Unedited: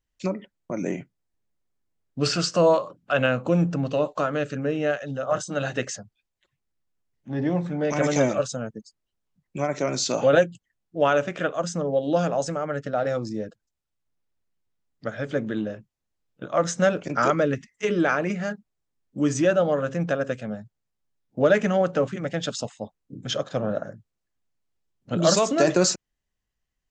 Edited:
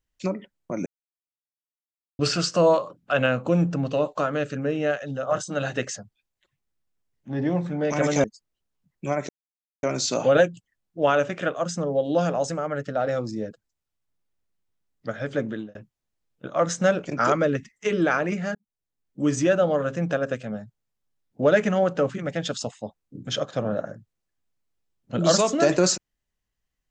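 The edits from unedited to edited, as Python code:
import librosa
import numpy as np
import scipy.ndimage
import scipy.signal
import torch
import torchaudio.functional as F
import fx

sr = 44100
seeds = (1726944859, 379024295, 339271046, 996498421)

y = fx.edit(x, sr, fx.silence(start_s=0.86, length_s=1.33),
    fx.cut(start_s=8.24, length_s=0.52),
    fx.insert_silence(at_s=9.81, length_s=0.54),
    fx.fade_out_span(start_s=15.44, length_s=0.29),
    fx.fade_in_span(start_s=18.53, length_s=0.71), tone=tone)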